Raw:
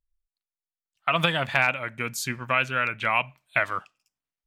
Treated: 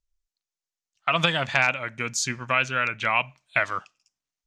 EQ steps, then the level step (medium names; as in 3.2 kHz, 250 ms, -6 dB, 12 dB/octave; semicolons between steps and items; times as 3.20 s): resonant low-pass 6.4 kHz, resonance Q 2.7; 0.0 dB